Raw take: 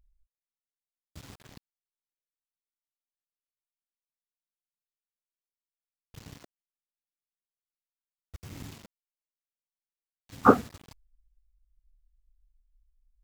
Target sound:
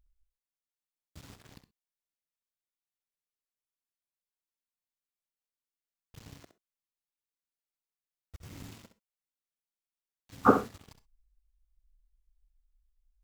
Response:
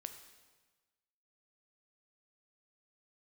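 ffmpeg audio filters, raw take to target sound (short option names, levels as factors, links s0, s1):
-filter_complex "[0:a]asplit=2[s0][s1];[1:a]atrim=start_sample=2205,atrim=end_sample=3087,adelay=65[s2];[s1][s2]afir=irnorm=-1:irlink=0,volume=0.531[s3];[s0][s3]amix=inputs=2:normalize=0,volume=0.668"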